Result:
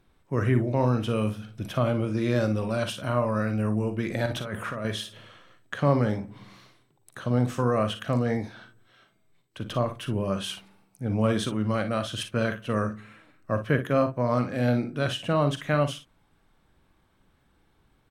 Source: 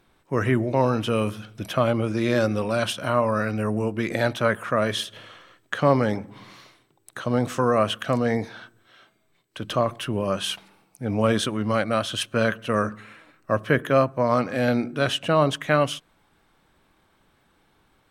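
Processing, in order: bass shelf 200 Hz +9.5 dB; 4.26–4.85 s: compressor with a negative ratio -26 dBFS, ratio -1; early reflections 41 ms -12 dB, 56 ms -11.5 dB; trim -6.5 dB

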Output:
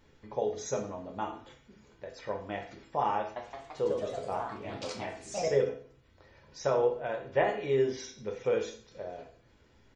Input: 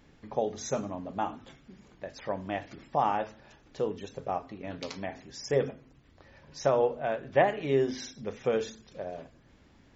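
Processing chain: comb 2.1 ms, depth 34%; 3.19–5.57 s: ever faster or slower copies 170 ms, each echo +2 st, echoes 3; reverberation RT60 0.45 s, pre-delay 6 ms, DRR 2 dB; trim -4.5 dB

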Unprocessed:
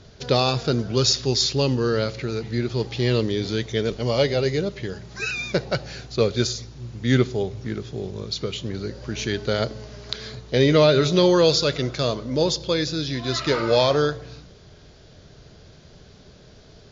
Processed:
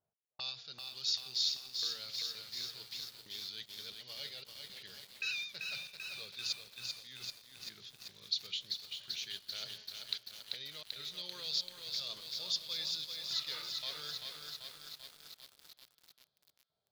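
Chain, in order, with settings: de-hum 57.73 Hz, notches 4; gate -37 dBFS, range -30 dB; resonant low shelf 220 Hz +8 dB, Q 1.5; reverse; compression 20:1, threshold -25 dBFS, peak gain reduction 19 dB; reverse; trance gate "x..xxx.xxxx" 115 bpm -60 dB; auto-wah 770–3900 Hz, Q 2.4, up, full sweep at -33.5 dBFS; on a send: echo that smears into a reverb 464 ms, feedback 42%, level -14 dB; on the sum: bit-crushed delay 389 ms, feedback 80%, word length 9-bit, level -4 dB

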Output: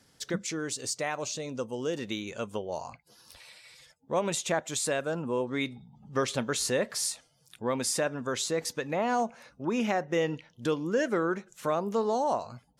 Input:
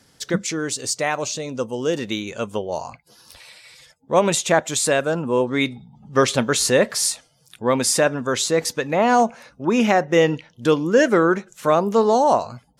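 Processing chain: compression 1.5:1, threshold -25 dBFS, peak gain reduction 5.5 dB; trim -7 dB

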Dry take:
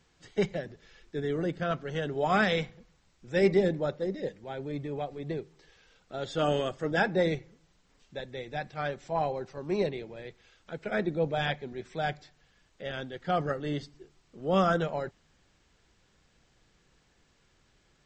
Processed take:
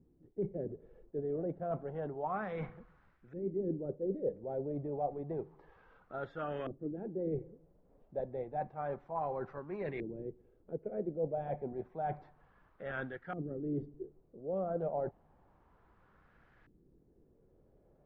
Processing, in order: dynamic bell 2.3 kHz, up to +4 dB, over -50 dBFS, Q 4.1; reverse; compression 8:1, threshold -37 dBFS, peak gain reduction 18 dB; reverse; LFO low-pass saw up 0.3 Hz 300–1700 Hz

